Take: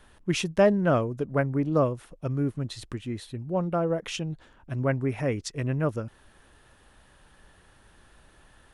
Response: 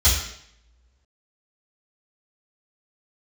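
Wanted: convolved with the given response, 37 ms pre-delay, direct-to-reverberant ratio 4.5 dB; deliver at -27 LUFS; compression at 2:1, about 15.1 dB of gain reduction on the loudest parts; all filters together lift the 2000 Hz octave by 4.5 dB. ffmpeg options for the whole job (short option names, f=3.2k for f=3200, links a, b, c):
-filter_complex "[0:a]equalizer=f=2k:t=o:g=6,acompressor=threshold=-43dB:ratio=2,asplit=2[a][b];[1:a]atrim=start_sample=2205,adelay=37[c];[b][c]afir=irnorm=-1:irlink=0,volume=-21dB[d];[a][d]amix=inputs=2:normalize=0,volume=11dB"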